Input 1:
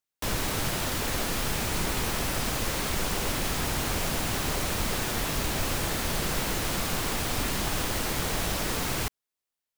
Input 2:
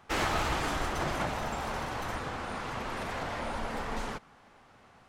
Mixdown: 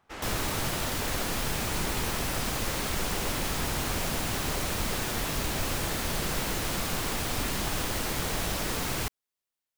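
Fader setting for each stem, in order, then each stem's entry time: −1.5, −10.5 decibels; 0.00, 0.00 seconds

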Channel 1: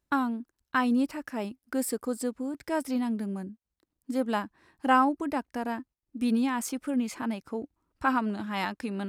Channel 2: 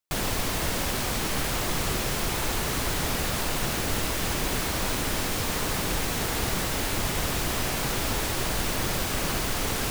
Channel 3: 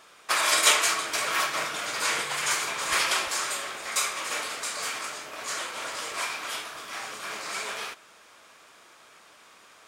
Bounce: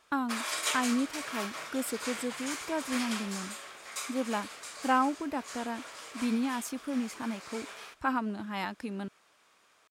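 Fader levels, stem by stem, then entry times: −4.0 dB, muted, −11.5 dB; 0.00 s, muted, 0.00 s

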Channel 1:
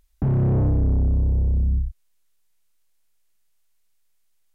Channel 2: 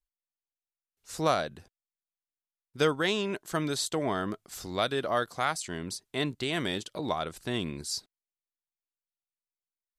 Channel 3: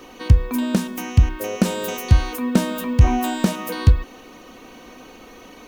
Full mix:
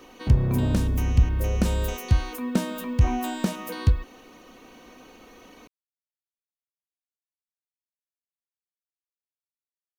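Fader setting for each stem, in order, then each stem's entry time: −5.0 dB, muted, −6.5 dB; 0.05 s, muted, 0.00 s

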